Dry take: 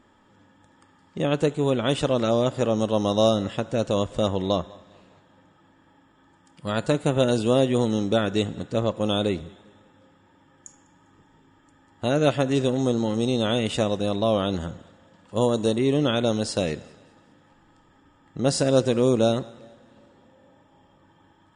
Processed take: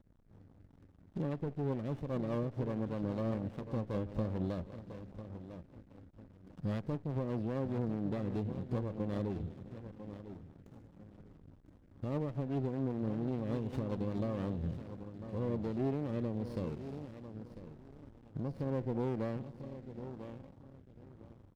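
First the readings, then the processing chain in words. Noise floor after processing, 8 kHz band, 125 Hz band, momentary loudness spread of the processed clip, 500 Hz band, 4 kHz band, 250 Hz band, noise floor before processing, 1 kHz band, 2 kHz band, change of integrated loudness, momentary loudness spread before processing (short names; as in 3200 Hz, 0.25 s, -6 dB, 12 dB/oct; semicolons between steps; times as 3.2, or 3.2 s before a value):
-61 dBFS, under -30 dB, -9.0 dB, 20 LU, -17.0 dB, -29.5 dB, -12.0 dB, -59 dBFS, -16.5 dB, -19.0 dB, -15.0 dB, 9 LU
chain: one diode to ground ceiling -17 dBFS; tilt -2 dB/oct; treble ducked by the level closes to 1900 Hz, closed at -15 dBFS; compressor 3:1, threshold -35 dBFS, peak gain reduction 16.5 dB; harmonic-percussive split percussive -5 dB; bell 4800 Hz +13.5 dB 0.21 oct; feedback echo 0.998 s, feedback 33%, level -10.5 dB; backlash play -46.5 dBFS; rotary speaker horn 5 Hz, later 0.9 Hz, at 14.01; running maximum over 17 samples; gain +1.5 dB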